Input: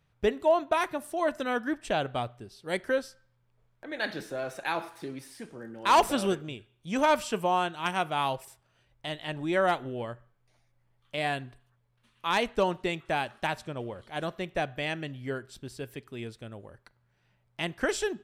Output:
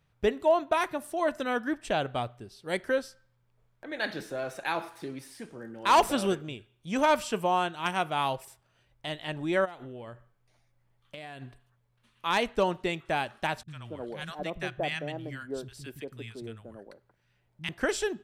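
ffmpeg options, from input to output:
-filter_complex "[0:a]asplit=3[s0][s1][s2];[s0]afade=t=out:st=9.64:d=0.02[s3];[s1]acompressor=threshold=0.0126:ratio=20:attack=3.2:release=140:knee=1:detection=peak,afade=t=in:st=9.64:d=0.02,afade=t=out:st=11.41:d=0.02[s4];[s2]afade=t=in:st=11.41:d=0.02[s5];[s3][s4][s5]amix=inputs=3:normalize=0,asettb=1/sr,asplit=3[s6][s7][s8];[s6]atrim=end=13.634[s9];[s7]atrim=start=13.63:end=17.69,asetpts=PTS-STARTPTS,afade=t=in:d=0.004:c=qsin,afade=t=out:st=4.056:d=0.004:c=qsin,acrossover=split=190|1000[s10][s11][s12];[s12]adelay=50[s13];[s11]adelay=230[s14];[s10][s14][s13]amix=inputs=3:normalize=0,atrim=end_sample=179046[s15];[s8]atrim=start=17.686[s16];[s9][s15]acrossfade=d=0.004:c1=hsin:c2=qsin[s17];[s17][s16]acrossfade=d=0.004:c1=qsin:c2=hsin"

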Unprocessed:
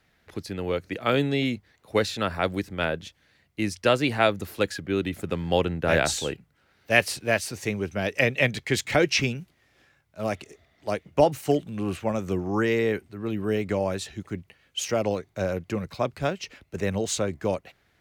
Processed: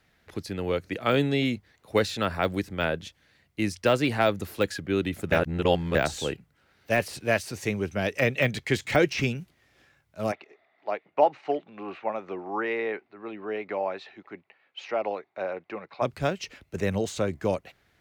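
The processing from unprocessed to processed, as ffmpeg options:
-filter_complex "[0:a]asplit=3[s0][s1][s2];[s0]afade=t=out:st=10.31:d=0.02[s3];[s1]highpass=480,equalizer=f=500:t=q:w=4:g=-3,equalizer=f=810:t=q:w=4:g=4,equalizer=f=1600:t=q:w=4:g=-3,equalizer=f=3100:t=q:w=4:g=-8,lowpass=f=3300:w=0.5412,lowpass=f=3300:w=1.3066,afade=t=in:st=10.31:d=0.02,afade=t=out:st=16.01:d=0.02[s4];[s2]afade=t=in:st=16.01:d=0.02[s5];[s3][s4][s5]amix=inputs=3:normalize=0,asplit=3[s6][s7][s8];[s6]atrim=end=5.322[s9];[s7]atrim=start=5.318:end=5.952,asetpts=PTS-STARTPTS,areverse[s10];[s8]atrim=start=5.948[s11];[s9][s10]acrossfade=d=0.004:c1=hsin:c2=hsin[s12];[s12][s11]acrossfade=d=0.004:c1=hsin:c2=hsin,deesser=0.7"

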